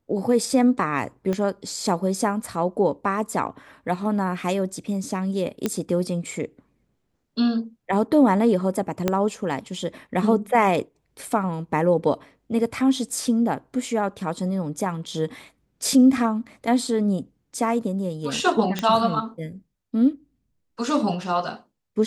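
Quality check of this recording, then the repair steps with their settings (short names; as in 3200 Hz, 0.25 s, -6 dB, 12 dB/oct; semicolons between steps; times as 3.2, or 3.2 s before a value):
1.33 pop -15 dBFS
5.66 pop -9 dBFS
9.08 pop -7 dBFS
18.79 pop -10 dBFS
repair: de-click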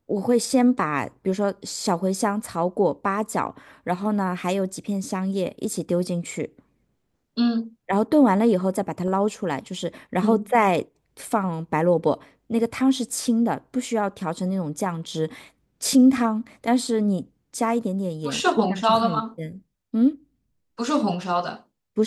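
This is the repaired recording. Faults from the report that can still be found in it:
1.33 pop
9.08 pop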